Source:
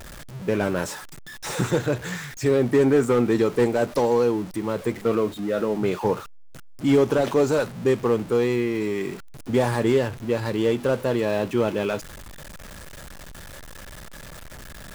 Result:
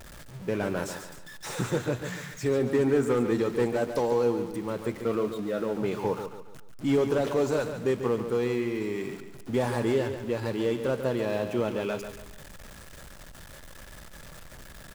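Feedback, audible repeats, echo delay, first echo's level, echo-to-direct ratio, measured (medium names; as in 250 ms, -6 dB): 39%, 4, 142 ms, -9.0 dB, -8.5 dB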